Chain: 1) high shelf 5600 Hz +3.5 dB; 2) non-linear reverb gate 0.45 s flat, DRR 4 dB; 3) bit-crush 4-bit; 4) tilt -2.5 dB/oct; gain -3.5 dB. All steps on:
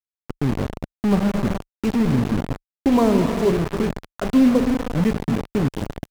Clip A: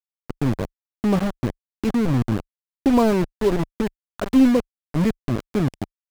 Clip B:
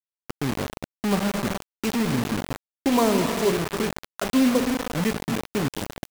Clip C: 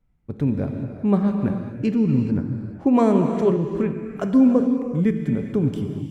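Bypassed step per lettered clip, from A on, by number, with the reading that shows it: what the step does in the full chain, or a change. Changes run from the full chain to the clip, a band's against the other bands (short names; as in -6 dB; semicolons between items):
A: 2, momentary loudness spread change +2 LU; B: 4, 8 kHz band +9.0 dB; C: 3, distortion -7 dB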